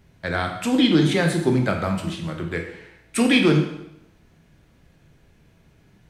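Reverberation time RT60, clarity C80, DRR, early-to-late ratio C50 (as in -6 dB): 0.85 s, 9.0 dB, 2.5 dB, 6.5 dB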